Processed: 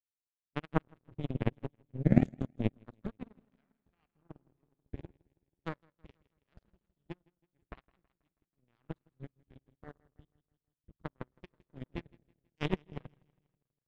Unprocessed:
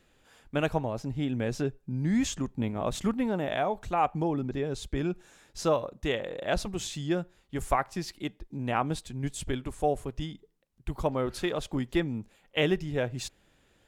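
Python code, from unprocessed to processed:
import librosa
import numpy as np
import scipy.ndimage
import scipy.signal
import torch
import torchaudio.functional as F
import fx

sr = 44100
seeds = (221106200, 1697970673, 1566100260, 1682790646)

p1 = x + 0.5 * 10.0 ** (-38.5 / 20.0) * np.sign(x)
p2 = fx.riaa(p1, sr, side='playback')
p3 = fx.notch(p2, sr, hz=5400.0, q=9.9)
p4 = fx.rev_spring(p3, sr, rt60_s=1.6, pass_ms=(54,), chirp_ms=20, drr_db=6.0)
p5 = fx.level_steps(p4, sr, step_db=19)
p6 = p4 + (p5 * librosa.db_to_amplitude(0.0))
p7 = scipy.signal.sosfilt(scipy.signal.butter(2, 61.0, 'highpass', fs=sr, output='sos'), p6)
p8 = fx.power_curve(p7, sr, exponent=3.0)
p9 = fx.peak_eq(p8, sr, hz=730.0, db=-6.5, octaves=1.3)
p10 = p9 + fx.echo_feedback(p9, sr, ms=162, feedback_pct=52, wet_db=-12.5, dry=0)
y = fx.upward_expand(p10, sr, threshold_db=-36.0, expansion=2.5)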